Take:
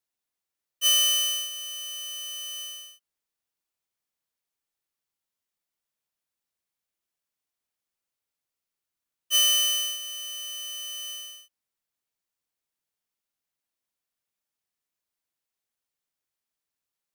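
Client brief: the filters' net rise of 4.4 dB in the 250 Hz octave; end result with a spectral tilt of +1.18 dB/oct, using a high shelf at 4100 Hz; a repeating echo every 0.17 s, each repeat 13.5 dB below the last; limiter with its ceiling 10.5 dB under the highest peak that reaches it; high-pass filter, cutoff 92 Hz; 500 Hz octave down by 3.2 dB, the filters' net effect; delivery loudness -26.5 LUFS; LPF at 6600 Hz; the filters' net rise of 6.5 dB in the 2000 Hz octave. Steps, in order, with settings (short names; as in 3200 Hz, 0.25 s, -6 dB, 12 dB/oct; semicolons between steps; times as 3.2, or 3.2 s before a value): HPF 92 Hz; LPF 6600 Hz; bell 250 Hz +7.5 dB; bell 500 Hz -6 dB; bell 2000 Hz +8.5 dB; high shelf 4100 Hz -5 dB; limiter -24 dBFS; feedback echo 0.17 s, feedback 21%, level -13.5 dB; gain +5 dB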